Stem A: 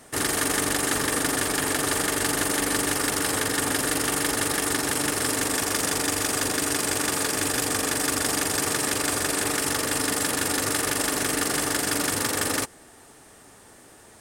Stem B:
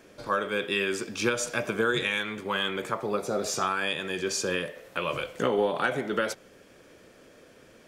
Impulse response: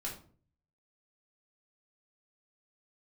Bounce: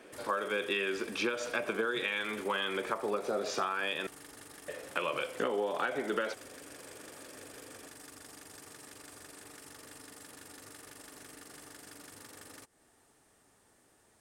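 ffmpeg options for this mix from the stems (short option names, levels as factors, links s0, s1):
-filter_complex "[0:a]acompressor=threshold=0.0251:ratio=6,volume=0.15[s0];[1:a]acrossover=split=220 4800:gain=0.141 1 0.0891[s1][s2][s3];[s1][s2][s3]amix=inputs=3:normalize=0,volume=1.12,asplit=3[s4][s5][s6];[s4]atrim=end=4.07,asetpts=PTS-STARTPTS,afade=t=out:st=4.066:d=0.004:c=hsin[s7];[s5]atrim=start=4.07:end=4.68,asetpts=PTS-STARTPTS,volume=0[s8];[s6]atrim=start=4.68,asetpts=PTS-STARTPTS,afade=t=in:d=0.004:c=hsin[s9];[s7][s8][s9]concat=n=3:v=0:a=1[s10];[s0][s10]amix=inputs=2:normalize=0,acompressor=threshold=0.0355:ratio=6"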